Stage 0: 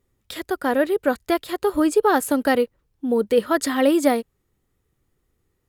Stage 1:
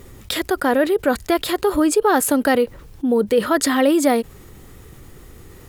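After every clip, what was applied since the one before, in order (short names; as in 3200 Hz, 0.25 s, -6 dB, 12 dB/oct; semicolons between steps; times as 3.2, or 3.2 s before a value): fast leveller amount 50%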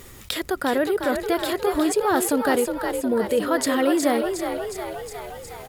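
on a send: frequency-shifting echo 0.362 s, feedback 58%, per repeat +47 Hz, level -6.5 dB; on the sum: mismatched tape noise reduction encoder only; gain -5 dB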